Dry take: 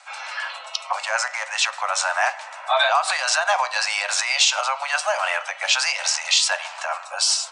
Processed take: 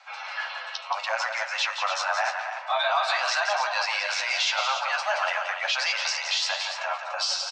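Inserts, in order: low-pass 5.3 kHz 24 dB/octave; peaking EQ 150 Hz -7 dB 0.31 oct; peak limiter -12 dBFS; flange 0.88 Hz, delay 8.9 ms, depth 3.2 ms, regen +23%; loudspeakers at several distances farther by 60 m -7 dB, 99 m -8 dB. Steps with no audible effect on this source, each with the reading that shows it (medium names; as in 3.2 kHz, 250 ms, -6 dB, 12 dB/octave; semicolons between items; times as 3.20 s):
peaking EQ 150 Hz: input has nothing below 480 Hz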